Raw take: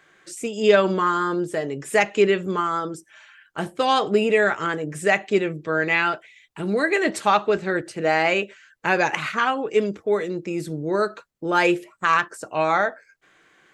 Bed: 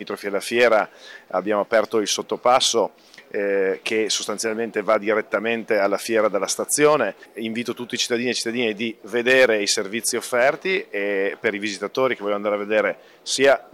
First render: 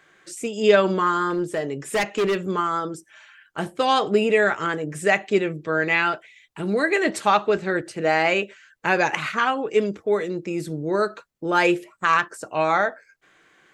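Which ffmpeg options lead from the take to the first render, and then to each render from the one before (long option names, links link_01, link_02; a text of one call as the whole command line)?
ffmpeg -i in.wav -filter_complex "[0:a]asettb=1/sr,asplit=3[link_01][link_02][link_03];[link_01]atrim=end=1.304[link_04];[link_02]atrim=start=1.3:end=2.44,asetpts=PTS-STARTPTS,afade=type=in:duration=0.004:curve=qsin,afade=type=out:start_time=1.136:duration=0.004:curve=qsin,asoftclip=type=hard:threshold=-18dB[link_05];[link_03]atrim=start=2.436[link_06];[link_04][link_05]acrossfade=duration=0.004:curve1=hsin:curve2=qsin[link_07];[link_07][link_06]acrossfade=duration=0.004:curve1=qsin:curve2=hsin" out.wav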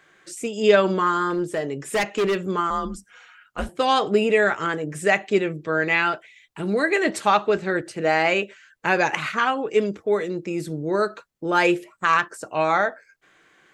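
ffmpeg -i in.wav -filter_complex "[0:a]asettb=1/sr,asplit=3[link_01][link_02][link_03];[link_01]atrim=end=2.704[link_04];[link_02]atrim=start=2.7:end=3.69,asetpts=PTS-STARTPTS,afade=type=in:duration=0.004:curve=qsin,afade=type=out:start_time=0.986:duration=0.004:curve=qsin,afreqshift=-130[link_05];[link_03]atrim=start=3.686[link_06];[link_04][link_05]acrossfade=duration=0.004:curve1=hsin:curve2=qsin[link_07];[link_07][link_06]acrossfade=duration=0.004:curve1=qsin:curve2=hsin" out.wav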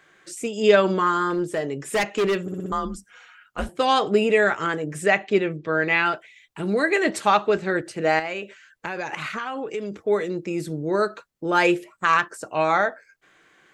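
ffmpeg -i in.wav -filter_complex "[0:a]asettb=1/sr,asplit=3[link_01][link_02][link_03];[link_01]atrim=end=5.064[link_04];[link_02]atrim=start=5.06:end=6.06,asetpts=PTS-STARTPTS,afade=type=in:duration=0.004:curve=qsin,afade=type=out:start_time=0.996:duration=0.004:curve=qsin,lowpass=5200[link_05];[link_03]atrim=start=6.056[link_06];[link_04][link_05]acrossfade=duration=0.004:curve1=hsin:curve2=qsin[link_07];[link_07][link_06]acrossfade=duration=0.004:curve1=qsin:curve2=hsin,asettb=1/sr,asplit=3[link_08][link_09][link_10];[link_08]atrim=end=8.194[link_11];[link_09]atrim=start=8.19:end=9.92,asetpts=PTS-STARTPTS,afade=type=in:duration=0.004:curve=qsin,afade=type=out:start_time=1.726:duration=0.004:curve=qsin,acompressor=threshold=-26dB:ratio=5:attack=3.2:release=140:knee=1:detection=peak[link_12];[link_10]atrim=start=9.916[link_13];[link_11][link_12]acrossfade=duration=0.004:curve1=hsin:curve2=qsin[link_14];[link_14][link_13]acrossfade=duration=0.004:curve1=qsin:curve2=hsin,asplit=6[link_15][link_16][link_17][link_18][link_19][link_20];[link_15]atrim=end=2.482[link_21];[link_16]atrim=start=2.418:end=2.482[link_22];[link_17]atrim=start=2.418:end=2.482[link_23];[link_18]atrim=start=2.418:end=2.482[link_24];[link_19]atrim=start=2.418:end=2.482[link_25];[link_20]atrim=start=2.718[link_26];[link_21][link_22]acrossfade=duration=0.004:curve1=hsin:curve2=hsin[link_27];[link_27][link_23]acrossfade=duration=0.004:curve1=hsin:curve2=hsin[link_28];[link_28][link_24]acrossfade=duration=0.004:curve1=hsin:curve2=hsin[link_29];[link_29][link_25]acrossfade=duration=0.004:curve1=hsin:curve2=hsin[link_30];[link_30][link_26]acrossfade=duration=0.004:curve1=hsin:curve2=hsin" out.wav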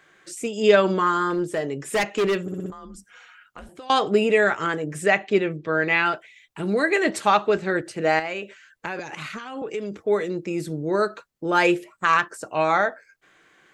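ffmpeg -i in.wav -filter_complex "[0:a]asettb=1/sr,asplit=3[link_01][link_02][link_03];[link_01]atrim=end=2.704[link_04];[link_02]atrim=start=2.7:end=3.9,asetpts=PTS-STARTPTS,afade=type=in:duration=0.004:curve=qsin,afade=type=out:start_time=1.196:duration=0.004:curve=qsin,acompressor=threshold=-36dB:ratio=16:attack=3.2:release=140:knee=1:detection=peak[link_05];[link_03]atrim=start=3.896[link_06];[link_04][link_05]acrossfade=duration=0.004:curve1=hsin:curve2=qsin[link_07];[link_07][link_06]acrossfade=duration=0.004:curve1=qsin:curve2=hsin,asettb=1/sr,asplit=3[link_08][link_09][link_10];[link_08]atrim=end=8.994[link_11];[link_09]atrim=start=8.99:end=9.62,asetpts=PTS-STARTPTS,afade=type=in:duration=0.004:curve=qsin,afade=type=out:start_time=0.626:duration=0.004:curve=qsin,acrossover=split=390|3000[link_12][link_13][link_14];[link_13]acompressor=threshold=-34dB:ratio=6:attack=3.2:release=140:knee=2.83:detection=peak[link_15];[link_12][link_15][link_14]amix=inputs=3:normalize=0[link_16];[link_10]atrim=start=9.616[link_17];[link_11][link_16]acrossfade=duration=0.004:curve1=hsin:curve2=qsin[link_18];[link_18][link_17]acrossfade=duration=0.004:curve1=qsin:curve2=hsin" out.wav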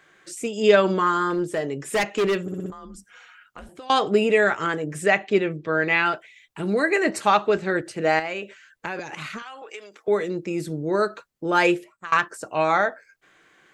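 ffmpeg -i in.wav -filter_complex "[0:a]asettb=1/sr,asplit=3[link_01][link_02][link_03];[link_01]atrim=end=6.804[link_04];[link_02]atrim=start=6.8:end=7.21,asetpts=PTS-STARTPTS,afade=type=in:duration=0.004:curve=qsin,afade=type=out:start_time=0.406:duration=0.004:curve=qsin,equalizer=frequency=3400:width=7.2:gain=-15[link_05];[link_03]atrim=start=7.206[link_06];[link_04][link_05]acrossfade=duration=0.004:curve1=hsin:curve2=qsin[link_07];[link_07][link_06]acrossfade=duration=0.004:curve1=qsin:curve2=hsin,asettb=1/sr,asplit=3[link_08][link_09][link_10];[link_08]atrim=end=9.424[link_11];[link_09]atrim=start=9.42:end=10.08,asetpts=PTS-STARTPTS,afade=type=in:duration=0.004:curve=qsin,afade=type=out:start_time=0.656:duration=0.004:curve=qsin,highpass=860[link_12];[link_10]atrim=start=10.076[link_13];[link_11][link_12]acrossfade=duration=0.004:curve1=hsin:curve2=qsin[link_14];[link_14][link_13]acrossfade=duration=0.004:curve1=qsin:curve2=hsin,asplit=2[link_15][link_16];[link_15]atrim=end=12.12,asetpts=PTS-STARTPTS,afade=type=out:start_time=11.68:duration=0.44:silence=0.0707946[link_17];[link_16]atrim=start=12.12,asetpts=PTS-STARTPTS,afade=type=in:duration=0.004:curve=hsin:silence=0.0707946[link_18];[link_17][link_18]concat=n=2:v=0:a=1" out.wav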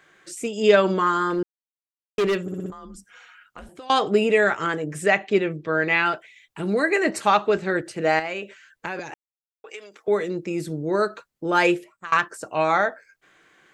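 ffmpeg -i in.wav -filter_complex "[0:a]asplit=5[link_01][link_02][link_03][link_04][link_05];[link_01]atrim=end=1.43,asetpts=PTS-STARTPTS,afade=type=out:start_time=1.426:duration=0.004:curve=hsin[link_06];[link_02]atrim=start=1.43:end=2.18,asetpts=PTS-STARTPTS,volume=0[link_07];[link_03]atrim=start=2.18:end=9.14,asetpts=PTS-STARTPTS,afade=type=in:duration=0.004:curve=hsin,afade=type=out:start_time=6.956:duration=0.004:curve=hsin[link_08];[link_04]atrim=start=9.14:end=9.64,asetpts=PTS-STARTPTS,volume=0[link_09];[link_05]atrim=start=9.64,asetpts=PTS-STARTPTS,afade=type=in:duration=0.004:curve=hsin[link_10];[link_06][link_07][link_08][link_09][link_10]concat=n=5:v=0:a=1" out.wav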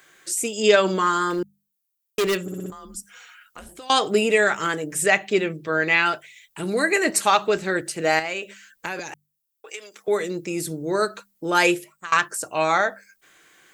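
ffmpeg -i in.wav -af "aemphasis=mode=production:type=75fm,bandreject=frequency=50:width_type=h:width=6,bandreject=frequency=100:width_type=h:width=6,bandreject=frequency=150:width_type=h:width=6,bandreject=frequency=200:width_type=h:width=6" out.wav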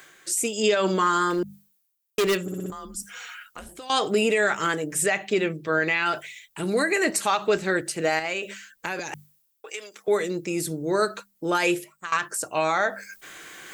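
ffmpeg -i in.wav -af "areverse,acompressor=mode=upward:threshold=-31dB:ratio=2.5,areverse,alimiter=limit=-12dB:level=0:latency=1:release=62" out.wav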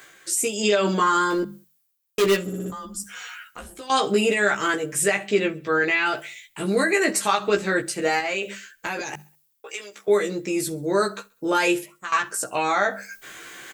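ffmpeg -i in.wav -filter_complex "[0:a]asplit=2[link_01][link_02];[link_02]adelay=15,volume=-2.5dB[link_03];[link_01][link_03]amix=inputs=2:normalize=0,aecho=1:1:66|132|198:0.0631|0.029|0.0134" out.wav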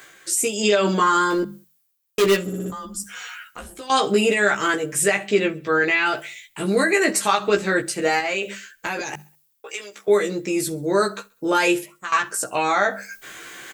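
ffmpeg -i in.wav -af "volume=2dB" out.wav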